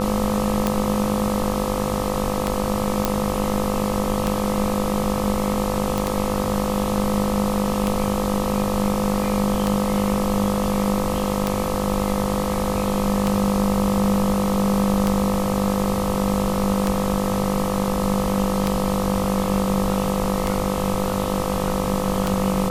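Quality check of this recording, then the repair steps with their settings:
buzz 50 Hz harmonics 26 -26 dBFS
tick 33 1/3 rpm -6 dBFS
whine 510 Hz -27 dBFS
3.05 s: pop
5.98 s: pop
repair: de-click; band-stop 510 Hz, Q 30; de-hum 50 Hz, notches 26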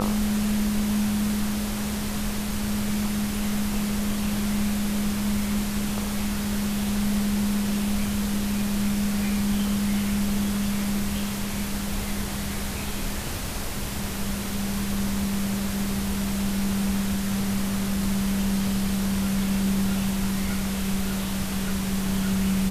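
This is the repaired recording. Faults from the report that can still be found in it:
nothing left

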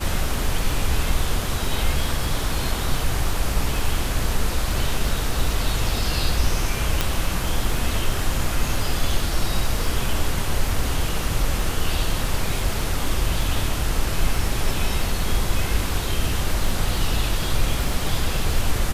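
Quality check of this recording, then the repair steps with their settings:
crackle 21 per s -27 dBFS
7.01 s: pop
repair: de-click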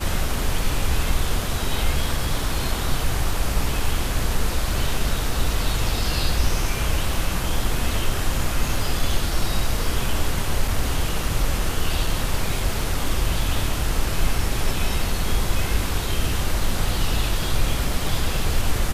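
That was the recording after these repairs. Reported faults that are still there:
nothing left

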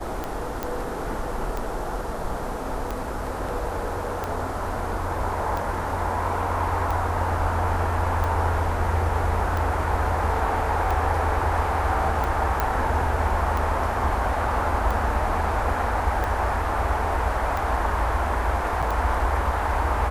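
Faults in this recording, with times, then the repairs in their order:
tick 45 rpm -15 dBFS
0.63 s: pop -13 dBFS
12.60 s: pop -9 dBFS
18.82–18.83 s: dropout 6.4 ms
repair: de-click; interpolate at 18.82 s, 6.4 ms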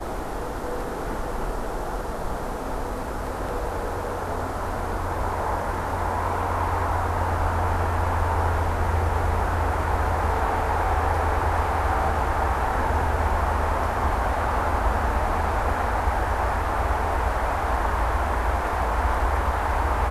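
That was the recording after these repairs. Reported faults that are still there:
nothing left

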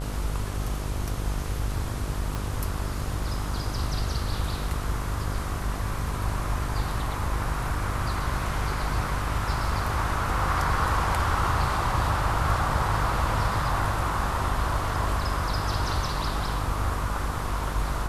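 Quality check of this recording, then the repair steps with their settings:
buzz 50 Hz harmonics 29 -31 dBFS
2.35 s: pop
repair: de-click; de-hum 50 Hz, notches 29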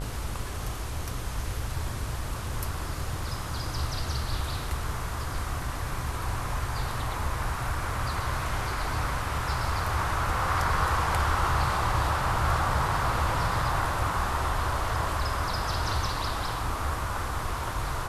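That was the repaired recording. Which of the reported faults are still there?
2.35 s: pop

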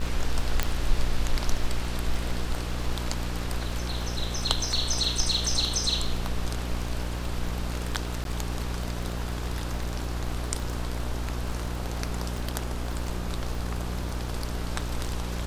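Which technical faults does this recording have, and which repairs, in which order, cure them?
buzz 60 Hz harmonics 28 -32 dBFS
crackle 21 per s -32 dBFS
0.63 s: pop -9 dBFS
8.24–8.25 s: dropout 12 ms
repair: de-click; de-hum 60 Hz, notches 28; interpolate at 8.24 s, 12 ms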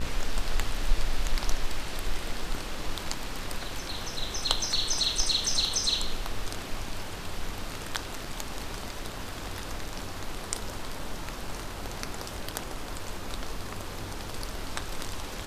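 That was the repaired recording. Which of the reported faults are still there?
nothing left

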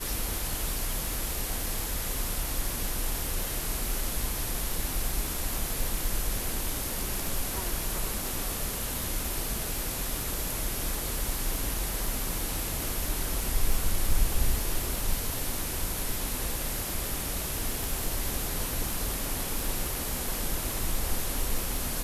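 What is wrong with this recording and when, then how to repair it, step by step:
crackle 46 per s -32 dBFS
17.84 s: pop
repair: de-click

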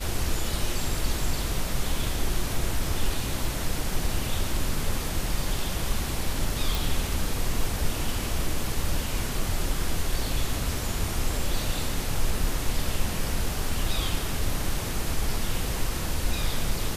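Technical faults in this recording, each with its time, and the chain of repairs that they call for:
6.75 s: pop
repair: de-click

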